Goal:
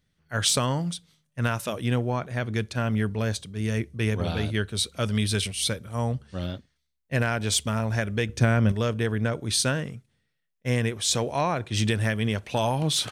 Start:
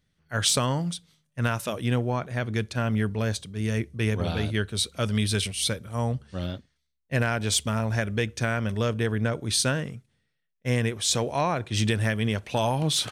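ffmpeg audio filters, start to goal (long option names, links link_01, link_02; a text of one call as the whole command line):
ffmpeg -i in.wav -filter_complex "[0:a]asettb=1/sr,asplit=3[link_01][link_02][link_03];[link_01]atrim=end=8.294[link_04];[link_02]atrim=start=8.29:end=8.72,asetpts=PTS-STARTPTS,afade=type=in:duration=0.004:curve=qsin,afade=type=out:start_time=0.426:duration=0.004:curve=qsin,lowshelf=frequency=490:gain=8.5[link_05];[link_03]atrim=start=8.716[link_06];[link_04][link_05]acrossfade=duration=0.004:curve1=hsin:curve2=qsin[link_07];[link_07][link_06]acrossfade=duration=0.004:curve1=qsin:curve2=hsin" out.wav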